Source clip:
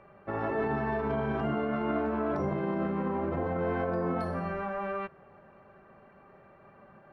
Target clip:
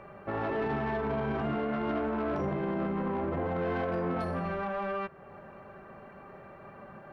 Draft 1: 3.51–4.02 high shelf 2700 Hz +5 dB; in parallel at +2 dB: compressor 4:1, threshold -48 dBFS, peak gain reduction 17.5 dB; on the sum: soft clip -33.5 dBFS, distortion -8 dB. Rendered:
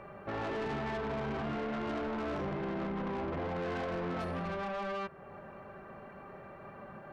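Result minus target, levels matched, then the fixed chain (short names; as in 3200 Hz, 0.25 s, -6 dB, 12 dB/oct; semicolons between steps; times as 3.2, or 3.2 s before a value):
soft clip: distortion +7 dB
3.51–4.02 high shelf 2700 Hz +5 dB; in parallel at +2 dB: compressor 4:1, threshold -48 dBFS, peak gain reduction 17.5 dB; on the sum: soft clip -25.5 dBFS, distortion -16 dB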